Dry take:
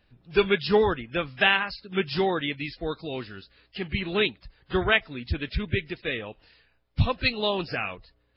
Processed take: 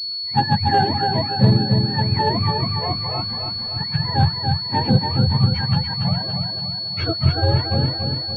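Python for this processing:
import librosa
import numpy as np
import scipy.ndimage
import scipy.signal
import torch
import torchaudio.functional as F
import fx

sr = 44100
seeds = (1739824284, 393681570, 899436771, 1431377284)

p1 = fx.octave_mirror(x, sr, pivot_hz=580.0)
p2 = fx.tilt_eq(p1, sr, slope=-4.0, at=(5.04, 5.49))
p3 = fx.echo_feedback(p2, sr, ms=285, feedback_pct=52, wet_db=-5)
p4 = fx.dmg_noise_colour(p3, sr, seeds[0], colour='pink', level_db=-50.0, at=(1.85, 3.81), fade=0.02)
p5 = 10.0 ** (-15.5 / 20.0) * (np.abs((p4 / 10.0 ** (-15.5 / 20.0) + 3.0) % 4.0 - 2.0) - 1.0)
p6 = p4 + (p5 * 10.0 ** (-8.5 / 20.0))
p7 = fx.pwm(p6, sr, carrier_hz=4400.0)
y = p7 * 10.0 ** (2.0 / 20.0)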